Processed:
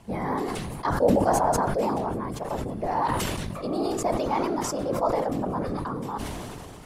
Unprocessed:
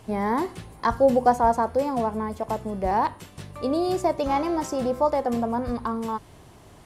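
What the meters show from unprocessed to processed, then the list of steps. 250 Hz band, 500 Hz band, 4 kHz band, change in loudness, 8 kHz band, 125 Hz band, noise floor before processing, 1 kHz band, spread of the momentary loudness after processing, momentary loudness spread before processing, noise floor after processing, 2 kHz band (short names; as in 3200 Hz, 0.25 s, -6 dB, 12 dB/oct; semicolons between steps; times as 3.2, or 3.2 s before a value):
-1.5 dB, -2.0 dB, +3.0 dB, -2.0 dB, +7.5 dB, +5.0 dB, -50 dBFS, -2.5 dB, 10 LU, 10 LU, -40 dBFS, -0.5 dB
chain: whisperiser; sustainer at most 22 dB/s; gain -4.5 dB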